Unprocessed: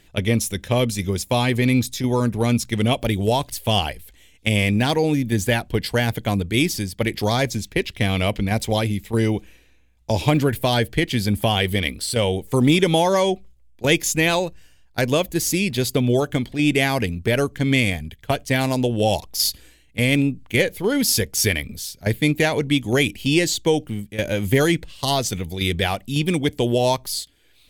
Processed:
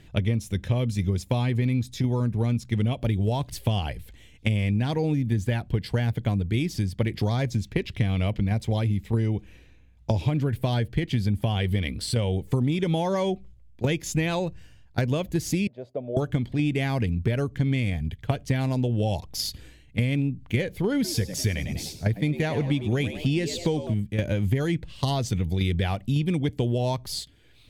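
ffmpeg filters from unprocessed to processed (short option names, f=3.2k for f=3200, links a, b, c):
-filter_complex "[0:a]asettb=1/sr,asplit=3[a][b][c];[a]atrim=end=15.674[d];[b]atrim=start=15.67:end=16.17,asetpts=PTS-STARTPTS,afade=t=in:d=0.004:c=qsin,afade=t=out:st=0.496:d=0.004:c=qsin,bandpass=f=610:t=q:w=6.8[e];[c]atrim=start=16.166[f];[d][e]acrossfade=d=0.004:c1=hsin:c2=qsin[g];[g][f]acrossfade=d=0.004:c1=qsin:c2=hsin,asettb=1/sr,asplit=3[h][i][j];[h]atrim=end=20.944[k];[i]atrim=start=20.94:end=23.94,asetpts=PTS-STARTPTS,afade=t=in:d=0.004:c=qsin,afade=t=out:st=2.996:d=0.004:c=qsin,asplit=5[l][m][n][o][p];[m]adelay=100,afreqshift=82,volume=-13dB[q];[n]adelay=200,afreqshift=164,volume=-20.3dB[r];[o]adelay=300,afreqshift=246,volume=-27.7dB[s];[p]adelay=400,afreqshift=328,volume=-35dB[t];[l][q][r][s][t]amix=inputs=5:normalize=0,atrim=end_sample=132300[u];[j]atrim=start=23.936[v];[k][u]acrossfade=d=0.004:c1=hsin:c2=qsin[w];[w][v]acrossfade=d=0.004:c1=qsin:c2=hsin,equalizer=f=110:w=0.63:g=10.5,acompressor=threshold=-22dB:ratio=5,highshelf=f=7.3k:g=-11.5"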